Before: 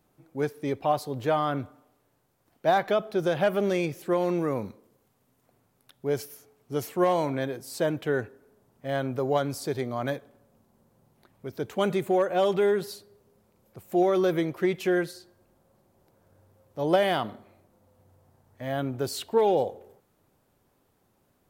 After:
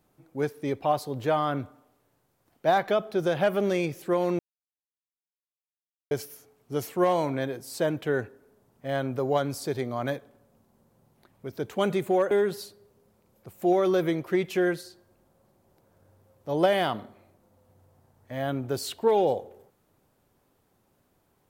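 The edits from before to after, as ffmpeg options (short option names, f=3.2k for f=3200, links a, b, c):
-filter_complex "[0:a]asplit=4[a][b][c][d];[a]atrim=end=4.39,asetpts=PTS-STARTPTS,afade=t=out:st=4.386:d=0.004:c=hsin[e];[b]atrim=start=4.39:end=6.11,asetpts=PTS-STARTPTS,volume=0[f];[c]atrim=start=6.11:end=12.312,asetpts=PTS-STARTPTS,afade=t=in:d=0.004:c=hsin[g];[d]atrim=start=12.608[h];[e][f][g]concat=n=3:v=0:a=1[i];[i][h]acrossfade=d=0.004:c1=hsin:c2=hsin"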